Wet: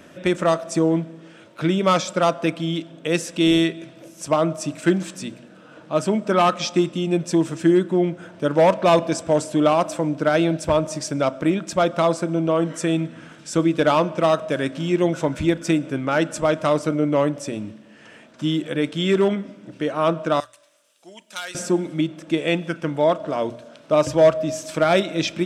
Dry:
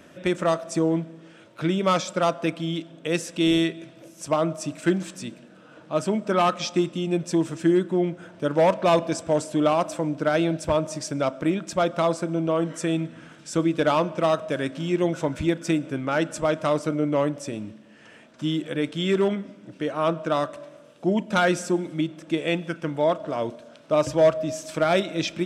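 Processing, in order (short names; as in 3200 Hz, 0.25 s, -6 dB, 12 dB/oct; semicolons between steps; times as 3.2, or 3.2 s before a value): 20.4–21.55 differentiator; notches 60/120 Hz; gain +3.5 dB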